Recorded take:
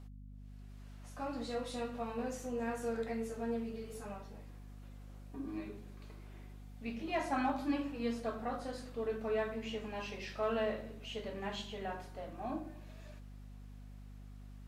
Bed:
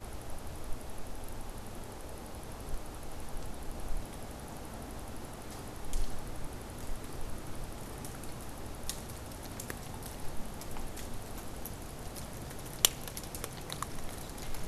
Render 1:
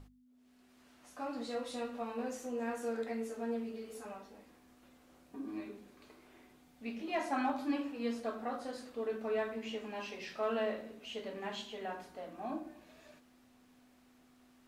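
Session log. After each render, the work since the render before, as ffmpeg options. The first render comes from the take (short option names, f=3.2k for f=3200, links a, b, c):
-af "bandreject=f=50:t=h:w=6,bandreject=f=100:t=h:w=6,bandreject=f=150:t=h:w=6,bandreject=f=200:t=h:w=6"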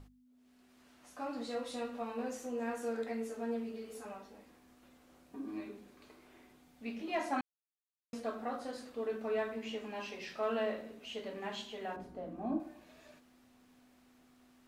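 -filter_complex "[0:a]asettb=1/sr,asplit=3[a][b][c];[a]atrim=end=11.964[d];[b]atrim=start=11.96:end=12.6,asetpts=PTS-STARTPTS,afade=t=in:d=0.004:c=qsin,afade=t=out:st=0.636:d=0.004:c=qsin,tiltshelf=f=670:g=9.5[e];[c]atrim=start=12.596[f];[d][e]acrossfade=d=0.004:c1=hsin:c2=qsin[g];[g][f]acrossfade=d=0.004:c1=qsin:c2=hsin,asplit=3[h][i][j];[h]atrim=end=7.41,asetpts=PTS-STARTPTS,afade=t=out:st=7.406:d=0.004:c=hsin[k];[i]atrim=start=7.41:end=8.13,asetpts=PTS-STARTPTS,volume=0[l];[j]atrim=start=8.13,asetpts=PTS-STARTPTS,afade=t=in:d=0.004:c=hsin[m];[k][l][m]concat=n=3:v=0:a=1"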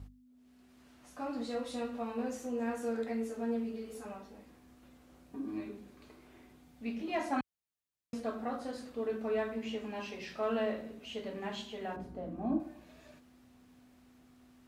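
-af "highpass=46,lowshelf=f=170:g=12"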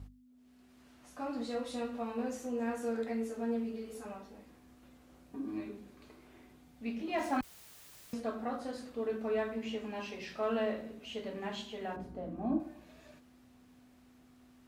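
-filter_complex "[0:a]asettb=1/sr,asplit=3[a][b][c];[a]atrim=end=7.184[d];[b]atrim=start=7.18:end=8.14,asetpts=PTS-STARTPTS,afade=t=in:d=0.004:c=qsin,afade=t=out:st=0.956:d=0.004:c=qsin,aeval=exprs='val(0)+0.5*0.00501*sgn(val(0))':c=same[e];[c]atrim=start=8.136[f];[d][e]acrossfade=d=0.004:c1=hsin:c2=qsin[g];[g][f]acrossfade=d=0.004:c1=qsin:c2=hsin"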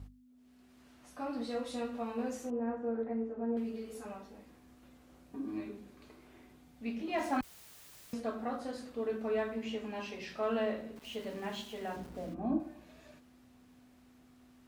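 -filter_complex "[0:a]asettb=1/sr,asplit=3[a][b][c];[a]atrim=end=1.114[d];[b]atrim=start=1.11:end=1.55,asetpts=PTS-STARTPTS,afade=t=in:d=0.004:c=qsin,afade=t=out:st=0.436:d=0.004:c=qsin,bandreject=f=7k:w=5.9[e];[c]atrim=start=1.546[f];[d][e]acrossfade=d=0.004:c1=hsin:c2=qsin[g];[g][f]acrossfade=d=0.004:c1=qsin:c2=hsin,asettb=1/sr,asplit=3[h][i][j];[h]atrim=end=2.504[k];[i]atrim=start=2.5:end=3.57,asetpts=PTS-STARTPTS,afade=t=in:d=0.004:c=qsin,afade=t=out:st=1.066:d=0.004:c=qsin,lowpass=1.1k[l];[j]atrim=start=3.566[m];[k][l]acrossfade=d=0.004:c1=hsin:c2=qsin[n];[n][m]acrossfade=d=0.004:c1=qsin:c2=hsin,asplit=3[o][p][q];[o]afade=t=out:st=10.95:d=0.02[r];[p]aeval=exprs='val(0)*gte(abs(val(0)),0.00299)':c=same,afade=t=in:st=10.95:d=0.02,afade=t=out:st=12.33:d=0.02[s];[q]afade=t=in:st=12.33:d=0.02[t];[r][s][t]amix=inputs=3:normalize=0"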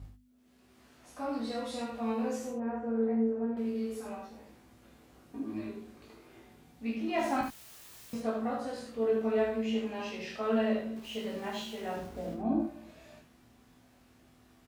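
-filter_complex "[0:a]asplit=2[a][b];[b]adelay=18,volume=-4.5dB[c];[a][c]amix=inputs=2:normalize=0,aecho=1:1:27|76:0.562|0.531"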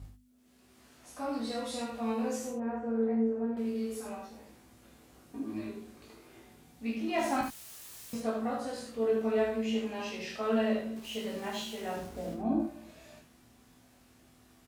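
-af "equalizer=f=10k:w=0.46:g=6"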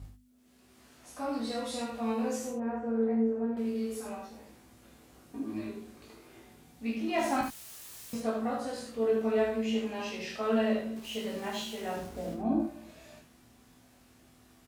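-af "volume=1dB"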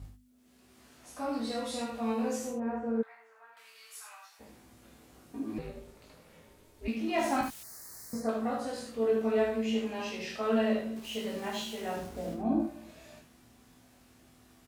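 -filter_complex "[0:a]asplit=3[a][b][c];[a]afade=t=out:st=3.01:d=0.02[d];[b]highpass=f=1.1k:w=0.5412,highpass=f=1.1k:w=1.3066,afade=t=in:st=3.01:d=0.02,afade=t=out:st=4.39:d=0.02[e];[c]afade=t=in:st=4.39:d=0.02[f];[d][e][f]amix=inputs=3:normalize=0,asettb=1/sr,asplit=3[g][h][i];[g]atrim=end=5.584[j];[h]atrim=start=5.58:end=6.88,asetpts=PTS-STARTPTS,afade=t=in:d=0.004:c=qsin,afade=t=out:st=1.296:d=0.004:c=qsin,aeval=exprs='val(0)*sin(2*PI*170*n/s)':c=same[k];[i]atrim=start=6.876[l];[j][k]acrossfade=d=0.004:c1=hsin:c2=qsin[m];[m][l]acrossfade=d=0.004:c1=qsin:c2=hsin,asettb=1/sr,asplit=3[n][o][p];[n]atrim=end=7.634[q];[o]atrim=start=7.63:end=8.29,asetpts=PTS-STARTPTS,afade=t=in:d=0.004:c=qsin,afade=t=out:st=0.656:d=0.004:c=qsin,asuperstop=centerf=3000:order=8:qfactor=1.3[r];[p]atrim=start=8.286[s];[q][r]acrossfade=d=0.004:c1=hsin:c2=qsin[t];[t][s]acrossfade=d=0.004:c1=qsin:c2=hsin"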